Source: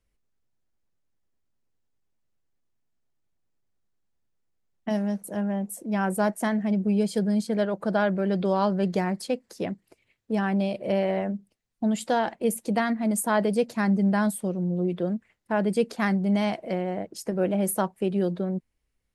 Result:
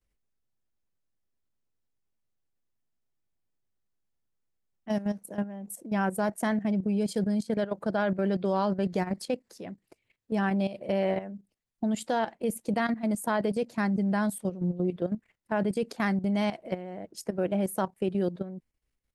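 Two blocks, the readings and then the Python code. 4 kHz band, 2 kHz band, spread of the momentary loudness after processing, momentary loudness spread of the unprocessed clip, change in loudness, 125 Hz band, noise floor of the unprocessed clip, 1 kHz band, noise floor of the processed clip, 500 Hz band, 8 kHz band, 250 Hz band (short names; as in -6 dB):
-3.5 dB, -3.0 dB, 9 LU, 7 LU, -3.5 dB, -3.5 dB, -75 dBFS, -3.5 dB, -79 dBFS, -3.5 dB, -6.5 dB, -3.5 dB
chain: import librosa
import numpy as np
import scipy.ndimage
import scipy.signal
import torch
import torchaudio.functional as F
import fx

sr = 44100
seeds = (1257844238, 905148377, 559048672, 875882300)

y = fx.level_steps(x, sr, step_db=13)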